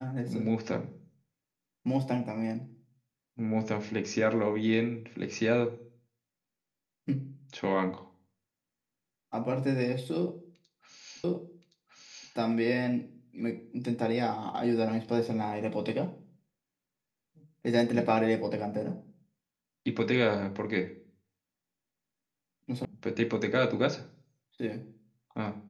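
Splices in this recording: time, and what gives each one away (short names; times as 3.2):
11.24 repeat of the last 1.07 s
22.85 sound cut off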